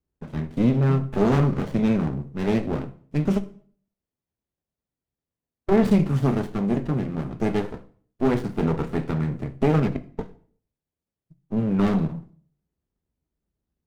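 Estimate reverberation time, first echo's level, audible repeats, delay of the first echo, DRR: 0.50 s, no echo, no echo, no echo, 11.0 dB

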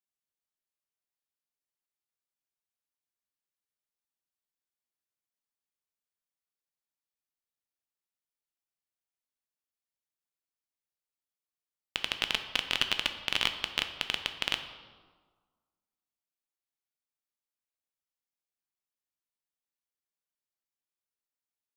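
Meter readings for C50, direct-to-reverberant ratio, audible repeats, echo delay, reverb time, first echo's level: 9.5 dB, 7.0 dB, no echo, no echo, 1.5 s, no echo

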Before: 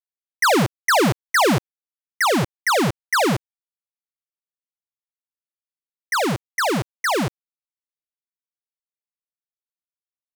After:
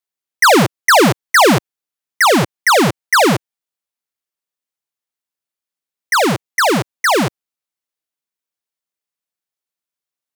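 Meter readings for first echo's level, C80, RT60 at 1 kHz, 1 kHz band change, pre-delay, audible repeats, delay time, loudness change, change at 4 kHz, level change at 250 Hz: no echo, no reverb, no reverb, +7.5 dB, no reverb, no echo, no echo, +7.0 dB, +7.5 dB, +6.0 dB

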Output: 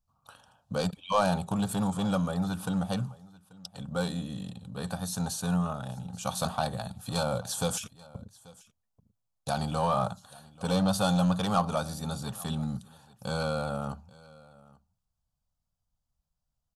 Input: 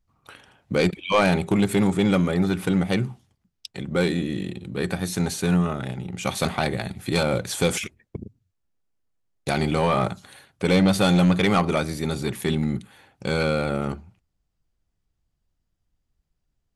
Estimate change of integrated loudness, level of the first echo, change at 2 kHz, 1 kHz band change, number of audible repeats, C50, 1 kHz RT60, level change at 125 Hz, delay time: -7.5 dB, -22.5 dB, -12.0 dB, -3.5 dB, 1, no reverb, no reverb, -7.0 dB, 836 ms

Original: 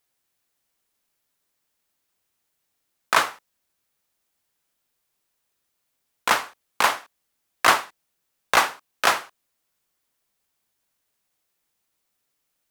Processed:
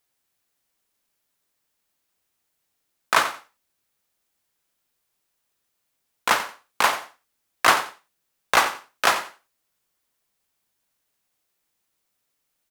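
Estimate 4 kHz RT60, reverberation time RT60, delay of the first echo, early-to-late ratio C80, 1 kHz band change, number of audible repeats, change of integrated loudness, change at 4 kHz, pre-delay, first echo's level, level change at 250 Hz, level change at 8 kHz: no reverb, no reverb, 90 ms, no reverb, 0.0 dB, 2, 0.0 dB, 0.0 dB, no reverb, -13.0 dB, 0.0 dB, 0.0 dB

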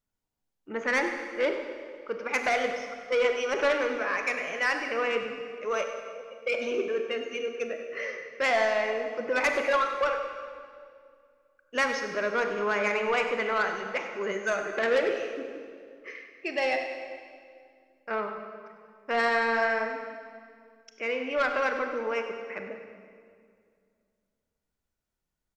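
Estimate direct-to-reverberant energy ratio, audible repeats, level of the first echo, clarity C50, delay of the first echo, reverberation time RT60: 4.5 dB, 2, -13.0 dB, 5.5 dB, 98 ms, 2.2 s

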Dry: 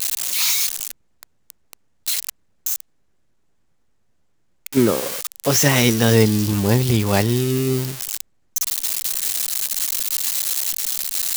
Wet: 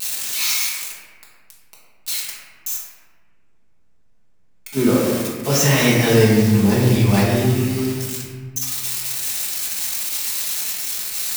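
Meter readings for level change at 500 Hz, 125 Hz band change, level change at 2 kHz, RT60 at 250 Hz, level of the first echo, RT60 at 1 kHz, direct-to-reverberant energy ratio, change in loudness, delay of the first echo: +1.5 dB, +2.0 dB, +1.5 dB, 2.0 s, no echo, 1.4 s, -7.5 dB, +0.5 dB, no echo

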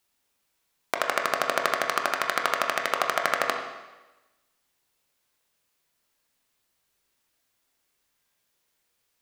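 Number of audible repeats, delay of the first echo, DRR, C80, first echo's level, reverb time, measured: no echo, no echo, 2.0 dB, 7.5 dB, no echo, 1.1 s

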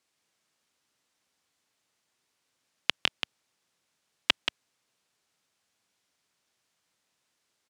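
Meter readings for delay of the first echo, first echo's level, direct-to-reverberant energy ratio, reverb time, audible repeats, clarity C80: 180 ms, -7.0 dB, no reverb, no reverb, 1, no reverb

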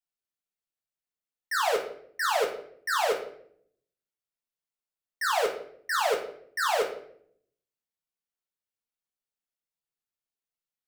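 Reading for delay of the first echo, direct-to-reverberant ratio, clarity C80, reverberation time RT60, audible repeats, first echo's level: no echo, -1.5 dB, 11.0 dB, 0.65 s, no echo, no echo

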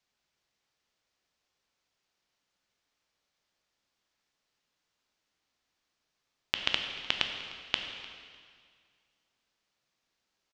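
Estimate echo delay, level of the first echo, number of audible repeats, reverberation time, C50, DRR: 302 ms, -20.0 dB, 1, 2.0 s, 5.5 dB, 4.0 dB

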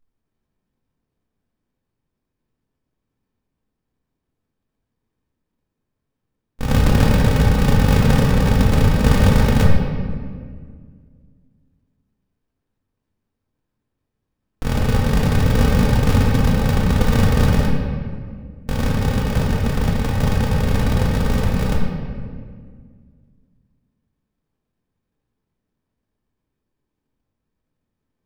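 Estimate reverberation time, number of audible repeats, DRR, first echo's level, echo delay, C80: 1.9 s, no echo, -4.0 dB, no echo, no echo, 2.5 dB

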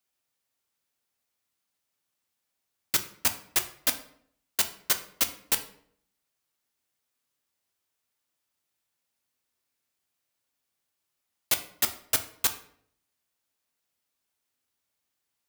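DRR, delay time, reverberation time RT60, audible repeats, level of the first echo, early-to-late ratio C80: 7.0 dB, no echo, 0.65 s, no echo, no echo, 16.0 dB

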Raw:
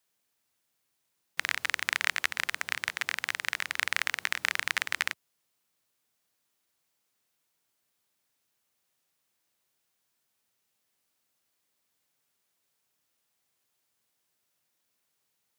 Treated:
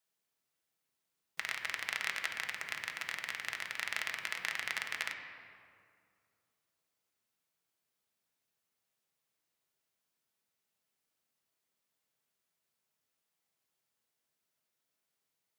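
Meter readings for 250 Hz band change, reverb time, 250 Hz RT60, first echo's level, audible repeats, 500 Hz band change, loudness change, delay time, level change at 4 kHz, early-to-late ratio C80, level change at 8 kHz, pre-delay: -5.5 dB, 2.2 s, 2.5 s, no echo, no echo, -4.5 dB, -7.0 dB, no echo, -7.0 dB, 7.0 dB, -8.0 dB, 5 ms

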